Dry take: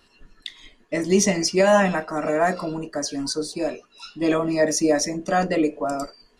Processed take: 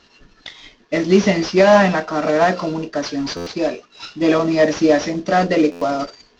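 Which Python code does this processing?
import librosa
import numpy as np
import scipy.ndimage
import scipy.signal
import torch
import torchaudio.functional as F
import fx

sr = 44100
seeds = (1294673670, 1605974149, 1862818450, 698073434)

y = fx.cvsd(x, sr, bps=32000)
y = fx.highpass(y, sr, hz=51.0, slope=6)
y = fx.buffer_glitch(y, sr, at_s=(3.36, 5.71), block=512, repeats=8)
y = F.gain(torch.from_numpy(y), 6.0).numpy()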